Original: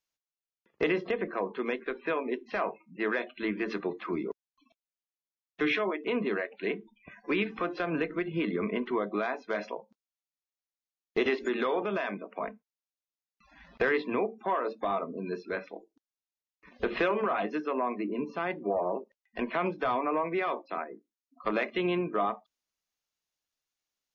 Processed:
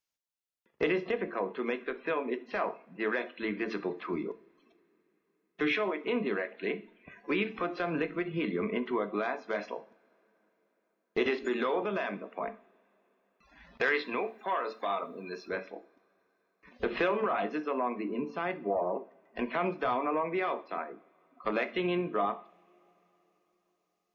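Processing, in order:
0:13.81–0:15.48: spectral tilt +3 dB per octave
convolution reverb, pre-delay 3 ms, DRR 11 dB
level −1.5 dB

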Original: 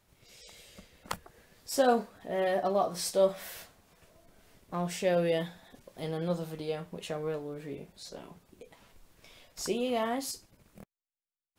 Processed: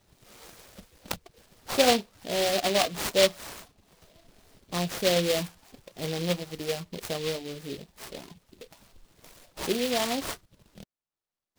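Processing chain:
reverb reduction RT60 0.51 s
decimation without filtering 7×
short delay modulated by noise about 3,200 Hz, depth 0.14 ms
level +4 dB

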